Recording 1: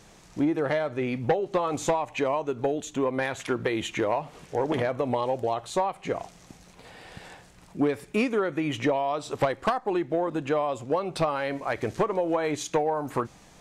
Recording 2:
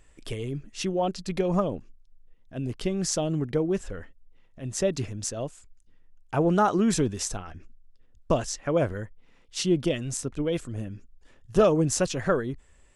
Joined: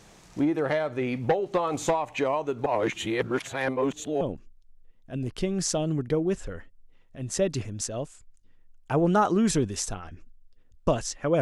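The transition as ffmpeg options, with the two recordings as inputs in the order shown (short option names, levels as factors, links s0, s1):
-filter_complex "[0:a]apad=whole_dur=11.41,atrim=end=11.41,asplit=2[s0][s1];[s0]atrim=end=2.662[s2];[s1]atrim=start=2.658:end=4.212,asetpts=PTS-STARTPTS,areverse[s3];[1:a]atrim=start=1.638:end=8.84[s4];[s2][s3]acrossfade=d=0.004:c1=hsin:c2=hsin[s5];[s5][s4]acrossfade=d=0.004:c1=hsin:c2=hsin"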